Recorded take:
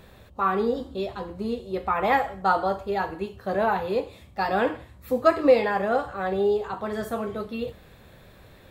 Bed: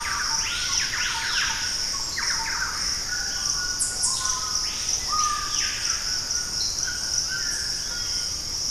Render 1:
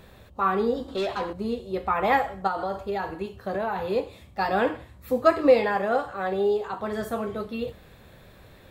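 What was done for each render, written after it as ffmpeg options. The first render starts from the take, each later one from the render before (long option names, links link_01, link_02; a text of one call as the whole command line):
ffmpeg -i in.wav -filter_complex "[0:a]asettb=1/sr,asplit=3[link_01][link_02][link_03];[link_01]atrim=end=0.884[link_04];[link_02]atrim=start=0.88:end=1.33,asetpts=PTS-STARTPTS,afade=type=in:duration=0.004:curve=qsin,afade=type=out:start_time=0.446:duration=0.004:curve=qsin,asplit=2[link_05][link_06];[link_06]highpass=frequency=720:poles=1,volume=17dB,asoftclip=type=tanh:threshold=-19.5dB[link_07];[link_05][link_07]amix=inputs=2:normalize=0,lowpass=frequency=5500:poles=1,volume=-6dB[link_08];[link_03]atrim=start=1.326[link_09];[link_04][link_08]acrossfade=duration=0.004:curve1=hsin:curve2=qsin[link_10];[link_10][link_09]acrossfade=duration=0.004:curve1=qsin:curve2=hsin,asettb=1/sr,asplit=3[link_11][link_12][link_13];[link_11]atrim=end=2.474[link_14];[link_12]atrim=start=2.47:end=3.89,asetpts=PTS-STARTPTS,afade=type=in:duration=0.004:curve=qsin,afade=type=out:start_time=1.416:duration=0.004:curve=qsin,acompressor=threshold=-24dB:ratio=6:attack=3.2:release=140:knee=1:detection=peak[link_15];[link_13]atrim=start=3.886[link_16];[link_14][link_15]acrossfade=duration=0.004:curve1=hsin:curve2=qsin[link_17];[link_17][link_16]acrossfade=duration=0.004:curve1=qsin:curve2=hsin,asettb=1/sr,asplit=3[link_18][link_19][link_20];[link_18]atrim=end=5.764[link_21];[link_19]atrim=start=5.76:end=6.8,asetpts=PTS-STARTPTS,afade=type=in:duration=0.004:curve=qsin,afade=type=out:start_time=1.036:duration=0.004:curve=qsin,lowshelf=frequency=120:gain=-9[link_22];[link_20]atrim=start=6.796[link_23];[link_21][link_22]acrossfade=duration=0.004:curve1=hsin:curve2=qsin[link_24];[link_24][link_23]acrossfade=duration=0.004:curve1=qsin:curve2=hsin" out.wav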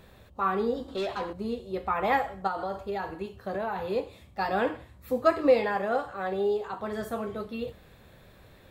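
ffmpeg -i in.wav -af "volume=-3.5dB" out.wav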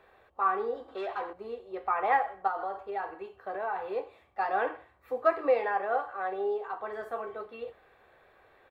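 ffmpeg -i in.wav -filter_complex "[0:a]acrossover=split=440 2400:gain=0.1 1 0.112[link_01][link_02][link_03];[link_01][link_02][link_03]amix=inputs=3:normalize=0,aecho=1:1:2.6:0.31" out.wav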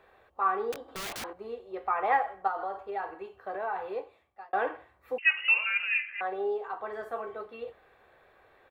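ffmpeg -i in.wav -filter_complex "[0:a]asettb=1/sr,asplit=3[link_01][link_02][link_03];[link_01]atrim=end=0.724[link_04];[link_02]atrim=start=0.72:end=1.24,asetpts=PTS-STARTPTS,afade=type=in:duration=0.004:curve=qsin,afade=type=out:start_time=0.516:duration=0.004:curve=qsin,aeval=exprs='(mod(44.7*val(0)+1,2)-1)/44.7':channel_layout=same[link_05];[link_03]atrim=start=1.236[link_06];[link_04][link_05]acrossfade=duration=0.004:curve1=hsin:curve2=qsin[link_07];[link_07][link_06]acrossfade=duration=0.004:curve1=qsin:curve2=hsin,asettb=1/sr,asplit=3[link_08][link_09][link_10];[link_08]atrim=end=5.184[link_11];[link_09]atrim=start=5.18:end=6.21,asetpts=PTS-STARTPTS,afade=type=in:duration=0.004:curve=qsin,afade=type=out:start_time=1.026:duration=0.004:curve=qsin,lowpass=frequency=2700:width_type=q:width=0.5098,lowpass=frequency=2700:width_type=q:width=0.6013,lowpass=frequency=2700:width_type=q:width=0.9,lowpass=frequency=2700:width_type=q:width=2.563,afreqshift=-3200[link_12];[link_10]atrim=start=6.206[link_13];[link_11][link_12]acrossfade=duration=0.004:curve1=hsin:curve2=qsin[link_14];[link_14][link_13]acrossfade=duration=0.004:curve1=qsin:curve2=hsin,asplit=2[link_15][link_16];[link_15]atrim=end=4.53,asetpts=PTS-STARTPTS,afade=type=out:start_time=3.81:duration=0.72[link_17];[link_16]atrim=start=4.53,asetpts=PTS-STARTPTS,afade=type=in:duration=0.004:curve=hsin[link_18];[link_17][link_18]concat=n=2:v=0:a=1" out.wav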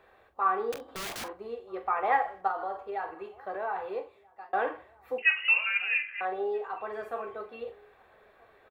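ffmpeg -i in.wav -filter_complex "[0:a]asplit=2[link_01][link_02];[link_02]adelay=43,volume=-12dB[link_03];[link_01][link_03]amix=inputs=2:normalize=0,asplit=2[link_04][link_05];[link_05]adelay=1283,volume=-26dB,highshelf=frequency=4000:gain=-28.9[link_06];[link_04][link_06]amix=inputs=2:normalize=0" out.wav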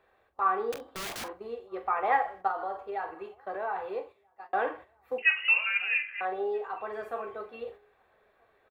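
ffmpeg -i in.wav -af "agate=range=-7dB:threshold=-46dB:ratio=16:detection=peak" out.wav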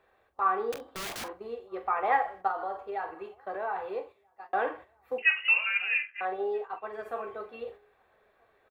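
ffmpeg -i in.wav -filter_complex "[0:a]asplit=3[link_01][link_02][link_03];[link_01]afade=type=out:start_time=5.3:duration=0.02[link_04];[link_02]agate=range=-33dB:threshold=-35dB:ratio=3:release=100:detection=peak,afade=type=in:start_time=5.3:duration=0.02,afade=type=out:start_time=7.04:duration=0.02[link_05];[link_03]afade=type=in:start_time=7.04:duration=0.02[link_06];[link_04][link_05][link_06]amix=inputs=3:normalize=0" out.wav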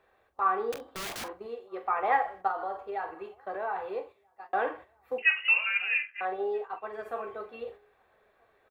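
ffmpeg -i in.wav -filter_complex "[0:a]asettb=1/sr,asplit=3[link_01][link_02][link_03];[link_01]atrim=end=1.464[link_04];[link_02]atrim=start=1.46:end=1.89,asetpts=PTS-STARTPTS,afade=type=in:duration=0.004:curve=qsin,afade=type=out:start_time=0.426:duration=0.004:curve=qsin,highpass=frequency=220:poles=1[link_05];[link_03]atrim=start=1.886[link_06];[link_04][link_05]acrossfade=duration=0.004:curve1=hsin:curve2=qsin[link_07];[link_07][link_06]acrossfade=duration=0.004:curve1=qsin:curve2=hsin" out.wav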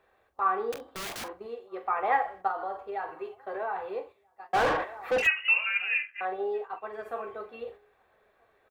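ffmpeg -i in.wav -filter_complex "[0:a]asettb=1/sr,asplit=3[link_01][link_02][link_03];[link_01]atrim=end=3.084[link_04];[link_02]atrim=start=3.08:end=3.63,asetpts=PTS-STARTPTS,afade=type=in:duration=0.004:curve=qsin,afade=type=out:start_time=0.546:duration=0.004:curve=qsin,aecho=1:1:7.5:0.65,atrim=end_sample=24255[link_05];[link_03]atrim=start=3.626[link_06];[link_04][link_05]acrossfade=duration=0.004:curve1=hsin:curve2=qsin[link_07];[link_07][link_06]acrossfade=duration=0.004:curve1=qsin:curve2=hsin,asplit=3[link_08][link_09][link_10];[link_08]afade=type=out:start_time=4.53:duration=0.02[link_11];[link_09]asplit=2[link_12][link_13];[link_13]highpass=frequency=720:poles=1,volume=33dB,asoftclip=type=tanh:threshold=-17.5dB[link_14];[link_12][link_14]amix=inputs=2:normalize=0,lowpass=frequency=1900:poles=1,volume=-6dB,afade=type=in:start_time=4.53:duration=0.02,afade=type=out:start_time=5.26:duration=0.02[link_15];[link_10]afade=type=in:start_time=5.26:duration=0.02[link_16];[link_11][link_15][link_16]amix=inputs=3:normalize=0" out.wav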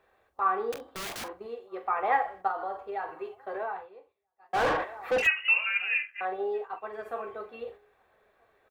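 ffmpeg -i in.wav -filter_complex "[0:a]asplit=3[link_01][link_02][link_03];[link_01]atrim=end=3.89,asetpts=PTS-STARTPTS,afade=type=out:start_time=3.55:duration=0.34:curve=qsin:silence=0.149624[link_04];[link_02]atrim=start=3.89:end=4.4,asetpts=PTS-STARTPTS,volume=-16.5dB[link_05];[link_03]atrim=start=4.4,asetpts=PTS-STARTPTS,afade=type=in:duration=0.34:curve=qsin:silence=0.149624[link_06];[link_04][link_05][link_06]concat=n=3:v=0:a=1" out.wav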